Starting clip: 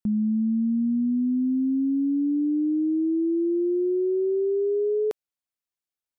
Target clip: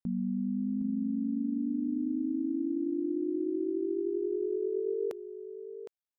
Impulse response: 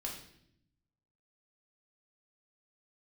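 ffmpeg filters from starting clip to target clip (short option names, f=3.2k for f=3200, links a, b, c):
-filter_complex "[0:a]aeval=exprs='val(0)*sin(2*PI*25*n/s)':c=same,asplit=2[a][b];[b]aecho=0:1:762:0.299[c];[a][c]amix=inputs=2:normalize=0,volume=-5.5dB"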